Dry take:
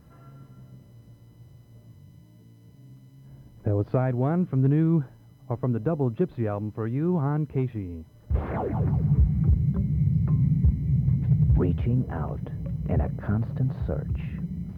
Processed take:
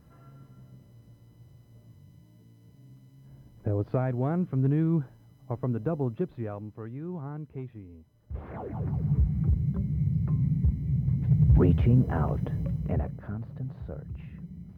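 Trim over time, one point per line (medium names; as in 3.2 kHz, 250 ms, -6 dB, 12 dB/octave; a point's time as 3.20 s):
5.97 s -3.5 dB
7.07 s -12 dB
8.37 s -12 dB
9.10 s -4 dB
11.10 s -4 dB
11.70 s +3 dB
12.58 s +3 dB
13.30 s -10 dB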